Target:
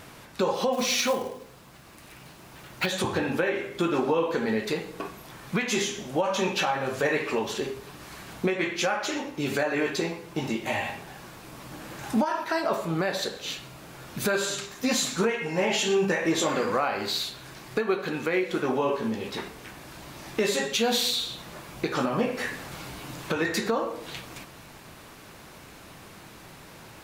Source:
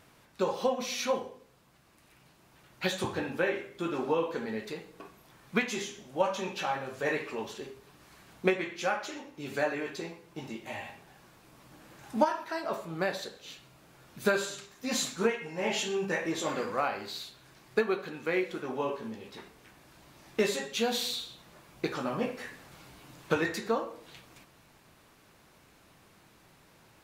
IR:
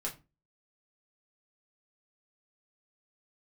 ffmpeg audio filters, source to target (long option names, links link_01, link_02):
-filter_complex "[0:a]asplit=2[link_01][link_02];[link_02]acompressor=threshold=-40dB:ratio=6,volume=1dB[link_03];[link_01][link_03]amix=inputs=2:normalize=0,alimiter=limit=-21.5dB:level=0:latency=1:release=151,asplit=3[link_04][link_05][link_06];[link_04]afade=type=out:start_time=0.72:duration=0.02[link_07];[link_05]acrusher=bits=4:mode=log:mix=0:aa=0.000001,afade=type=in:start_time=0.72:duration=0.02,afade=type=out:start_time=2.85:duration=0.02[link_08];[link_06]afade=type=in:start_time=2.85:duration=0.02[link_09];[link_07][link_08][link_09]amix=inputs=3:normalize=0,volume=6.5dB"